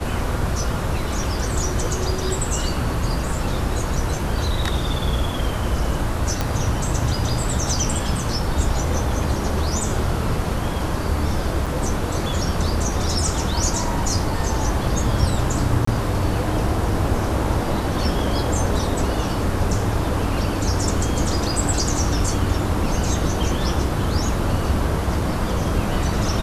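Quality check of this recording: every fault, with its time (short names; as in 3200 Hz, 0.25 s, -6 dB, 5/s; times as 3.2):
6.41 pop -7 dBFS
11.66–11.67 gap 5.8 ms
15.85–15.87 gap 24 ms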